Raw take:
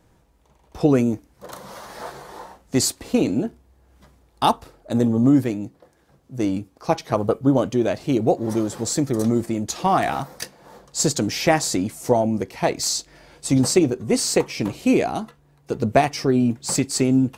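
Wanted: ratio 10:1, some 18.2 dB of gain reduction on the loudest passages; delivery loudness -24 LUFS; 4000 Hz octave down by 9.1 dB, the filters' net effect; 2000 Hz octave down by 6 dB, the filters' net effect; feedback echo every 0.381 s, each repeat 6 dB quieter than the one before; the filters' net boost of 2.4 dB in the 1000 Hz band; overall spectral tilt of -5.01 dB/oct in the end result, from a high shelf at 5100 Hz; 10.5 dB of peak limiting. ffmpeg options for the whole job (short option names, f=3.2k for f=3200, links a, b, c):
-af "equalizer=f=1k:t=o:g=5,equalizer=f=2k:t=o:g=-6,equalizer=f=4k:t=o:g=-7.5,highshelf=f=5.1k:g=-6,acompressor=threshold=-30dB:ratio=10,alimiter=level_in=2.5dB:limit=-24dB:level=0:latency=1,volume=-2.5dB,aecho=1:1:381|762|1143|1524|1905|2286:0.501|0.251|0.125|0.0626|0.0313|0.0157,volume=12.5dB"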